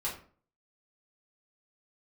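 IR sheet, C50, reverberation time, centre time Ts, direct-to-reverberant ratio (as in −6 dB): 7.5 dB, 0.45 s, 27 ms, −7.0 dB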